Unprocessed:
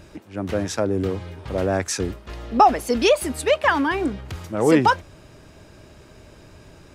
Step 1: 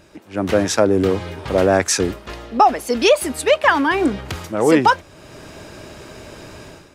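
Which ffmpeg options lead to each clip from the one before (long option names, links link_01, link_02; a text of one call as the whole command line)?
ffmpeg -i in.wav -af "lowshelf=frequency=140:gain=-10,dynaudnorm=framelen=120:gausssize=5:maxgain=13dB,volume=-1dB" out.wav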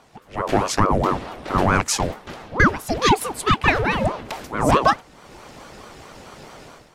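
ffmpeg -i in.wav -af "aeval=exprs='0.841*(cos(1*acos(clip(val(0)/0.841,-1,1)))-cos(1*PI/2))+0.0133*(cos(7*acos(clip(val(0)/0.841,-1,1)))-cos(7*PI/2))':channel_layout=same,aeval=exprs='val(0)*sin(2*PI*500*n/s+500*0.7/4.6*sin(2*PI*4.6*n/s))':channel_layout=same" out.wav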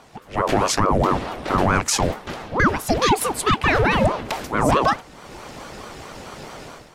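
ffmpeg -i in.wav -af "alimiter=level_in=10.5dB:limit=-1dB:release=50:level=0:latency=1,volume=-6dB" out.wav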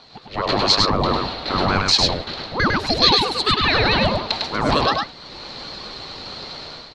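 ffmpeg -i in.wav -filter_complex "[0:a]lowpass=frequency=4200:width_type=q:width=12,asplit=2[link_01][link_02];[link_02]aecho=0:1:102:0.708[link_03];[link_01][link_03]amix=inputs=2:normalize=0,volume=-3dB" out.wav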